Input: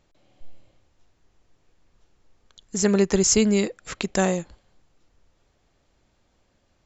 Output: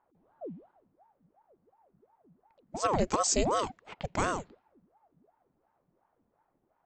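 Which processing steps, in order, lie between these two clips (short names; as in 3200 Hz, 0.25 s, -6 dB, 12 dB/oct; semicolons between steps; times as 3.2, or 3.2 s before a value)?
low-pass opened by the level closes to 980 Hz, open at -18.5 dBFS; ring modulator with a swept carrier 540 Hz, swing 70%, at 2.8 Hz; gain -5.5 dB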